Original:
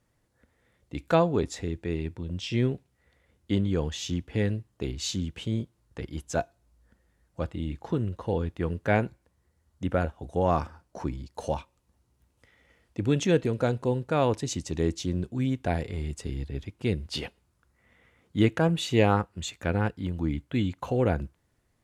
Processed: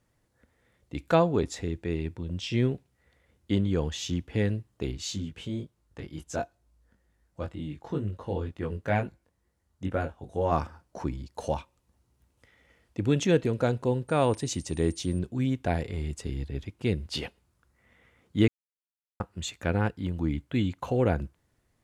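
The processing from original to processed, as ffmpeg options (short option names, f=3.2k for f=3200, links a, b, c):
-filter_complex "[0:a]asplit=3[a][b][c];[a]afade=t=out:st=4.96:d=0.02[d];[b]flanger=delay=19.5:depth=2.1:speed=2.1,afade=t=in:st=4.96:d=0.02,afade=t=out:st=10.51:d=0.02[e];[c]afade=t=in:st=10.51:d=0.02[f];[d][e][f]amix=inputs=3:normalize=0,asettb=1/sr,asplit=3[g][h][i];[g]atrim=end=14.084[j];[h]atrim=start=14.08:end=15.19,asetpts=PTS-STARTPTS,afade=t=in:d=0.004:c=qsin,afade=t=out:st=1.106:d=0.004:c=qsin,aeval=exprs='val(0)+0.00282*sin(2*PI*8900*n/s)':c=same[k];[i]atrim=start=15.186[l];[j][k]acrossfade=d=0.004:c1=hsin:c2=qsin[m];[m][l]acrossfade=d=0.004:c1=qsin:c2=hsin,asplit=3[n][o][p];[n]atrim=end=18.48,asetpts=PTS-STARTPTS,afade=t=out:st=18.476:d=0.004:c=hsin[q];[o]atrim=start=18.48:end=19.2,asetpts=PTS-STARTPTS,volume=0[r];[p]atrim=start=19.2,asetpts=PTS-STARTPTS,afade=t=in:d=0.004:c=hsin[s];[q][r][s]concat=n=3:v=0:a=1"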